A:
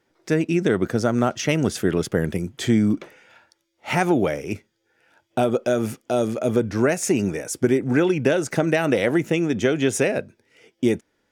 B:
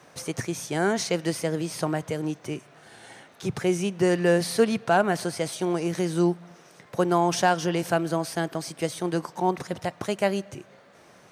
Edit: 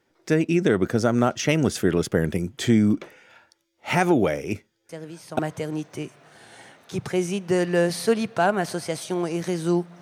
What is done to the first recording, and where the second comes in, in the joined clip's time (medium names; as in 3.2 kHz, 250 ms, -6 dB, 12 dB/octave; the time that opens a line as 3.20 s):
A
4.89 s: add B from 1.40 s 0.50 s -10 dB
5.39 s: go over to B from 1.90 s